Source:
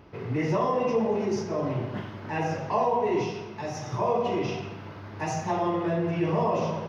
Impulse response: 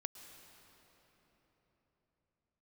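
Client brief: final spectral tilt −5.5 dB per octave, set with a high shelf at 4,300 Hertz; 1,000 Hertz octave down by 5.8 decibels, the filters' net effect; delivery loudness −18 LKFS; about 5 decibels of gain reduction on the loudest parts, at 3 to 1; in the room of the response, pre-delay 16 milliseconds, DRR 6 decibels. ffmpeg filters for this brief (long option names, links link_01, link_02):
-filter_complex "[0:a]equalizer=frequency=1000:width_type=o:gain=-7,highshelf=frequency=4300:gain=-7,acompressor=threshold=-29dB:ratio=3,asplit=2[link_01][link_02];[1:a]atrim=start_sample=2205,adelay=16[link_03];[link_02][link_03]afir=irnorm=-1:irlink=0,volume=-3dB[link_04];[link_01][link_04]amix=inputs=2:normalize=0,volume=15dB"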